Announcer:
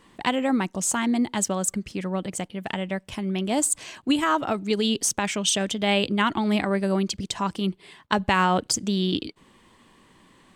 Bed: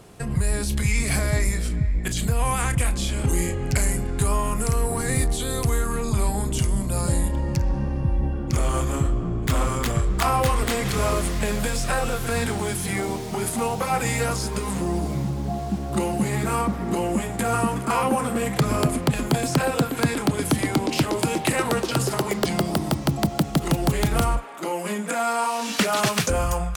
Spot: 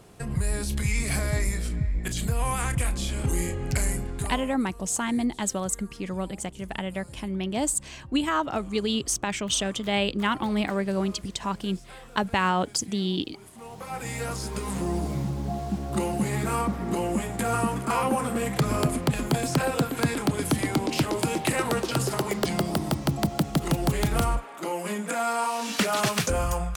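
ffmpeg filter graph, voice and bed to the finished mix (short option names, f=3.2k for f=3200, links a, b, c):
-filter_complex "[0:a]adelay=4050,volume=-3dB[a];[1:a]volume=16dB,afade=t=out:st=3.93:d=0.64:silence=0.112202,afade=t=in:st=13.54:d=1.31:silence=0.1[b];[a][b]amix=inputs=2:normalize=0"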